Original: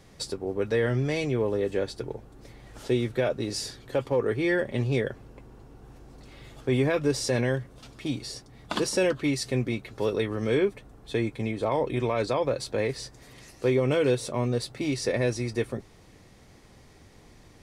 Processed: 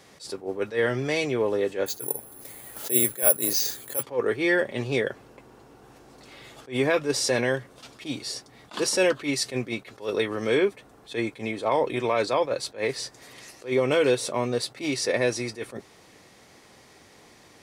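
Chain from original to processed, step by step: HPF 460 Hz 6 dB/oct; 1.86–4.03 careless resampling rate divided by 4×, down filtered, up zero stuff; attack slew limiter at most 220 dB/s; gain +5.5 dB

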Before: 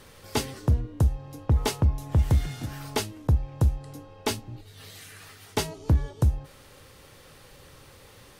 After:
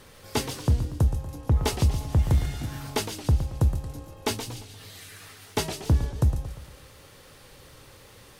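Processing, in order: thin delay 0.143 s, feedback 45%, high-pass 2900 Hz, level -7 dB; warbling echo 0.116 s, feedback 48%, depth 212 cents, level -10.5 dB

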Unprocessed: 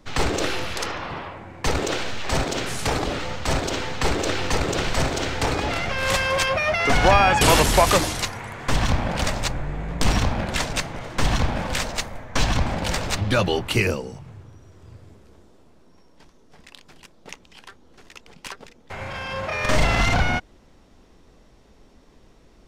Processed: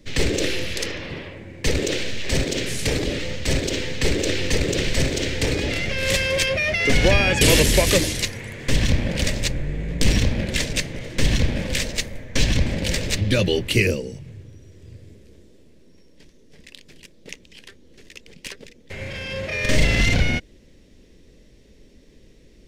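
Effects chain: band shelf 1000 Hz -15 dB 1.3 oct; gain +2.5 dB

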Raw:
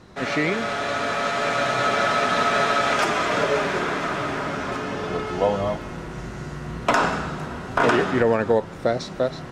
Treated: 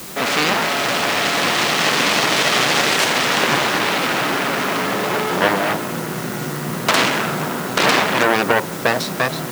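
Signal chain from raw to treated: in parallel at +1 dB: limiter -18.5 dBFS, peak gain reduction 11 dB; on the sum: added harmonics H 3 -12 dB, 6 -13 dB, 7 -13 dB, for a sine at -4.5 dBFS; HPF 140 Hz 24 dB/oct; requantised 6-bit, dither triangular; gain +1.5 dB

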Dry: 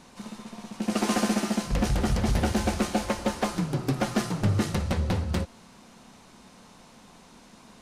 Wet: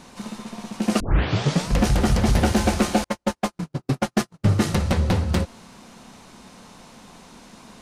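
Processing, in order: 1 tape start 0.71 s; 3.04–4.6 gate -24 dBFS, range -49 dB; gain +6 dB

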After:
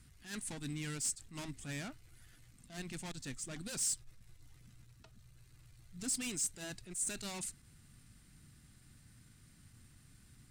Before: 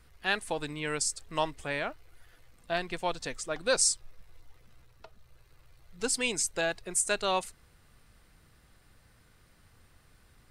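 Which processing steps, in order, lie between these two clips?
tube stage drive 37 dB, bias 0.3; ten-band EQ 125 Hz +8 dB, 250 Hz +8 dB, 500 Hz -10 dB, 1000 Hz -5 dB, 8000 Hz +9 dB; attack slew limiter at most 150 dB/s; gain -2.5 dB

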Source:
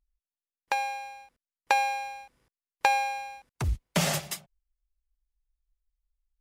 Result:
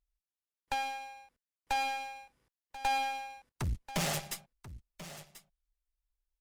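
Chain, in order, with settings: tube stage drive 28 dB, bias 0.8; echo 1.037 s -14.5 dB

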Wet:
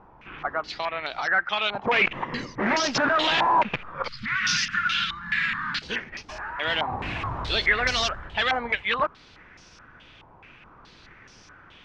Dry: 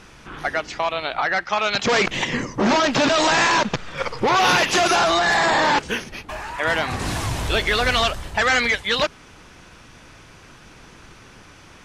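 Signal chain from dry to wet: 4.08–5.82 elliptic band-stop 220–1400 Hz, stop band 50 dB; stepped low-pass 4.7 Hz 900–5500 Hz; gain -8 dB

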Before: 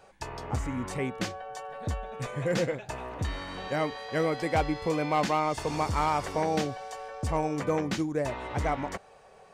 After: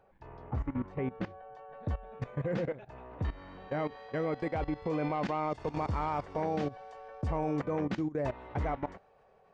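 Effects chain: level quantiser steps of 16 dB; tape spacing loss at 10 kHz 45 dB, from 1.72 s at 10 kHz 33 dB, from 3.78 s at 10 kHz 26 dB; gain +2 dB

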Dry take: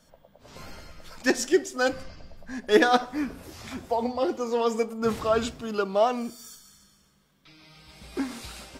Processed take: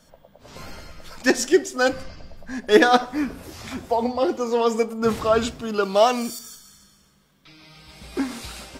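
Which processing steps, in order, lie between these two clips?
5.83–6.39 high shelf 2500 Hz +11 dB; gain +4.5 dB

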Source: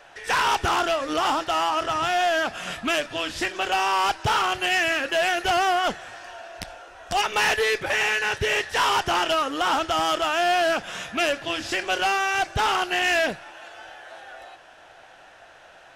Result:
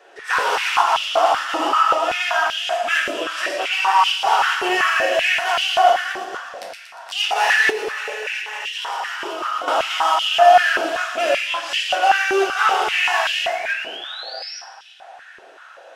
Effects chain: reverse delay 0.245 s, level -4.5 dB; thin delay 0.118 s, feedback 54%, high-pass 4300 Hz, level -4 dB; 13.16–14.58 painted sound rise 1500–5800 Hz -33 dBFS; reverb RT60 1.3 s, pre-delay 3 ms, DRR -2 dB; 7.7–9.68 level quantiser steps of 13 dB; stepped high-pass 5.2 Hz 390–3000 Hz; gain -4.5 dB

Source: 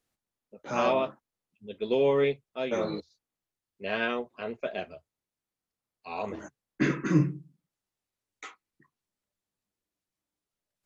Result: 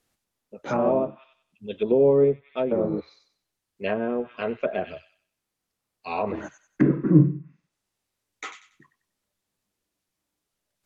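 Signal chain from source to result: thin delay 94 ms, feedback 31%, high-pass 2100 Hz, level -7.5 dB; treble ducked by the level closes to 560 Hz, closed at -26.5 dBFS; gain +7.5 dB

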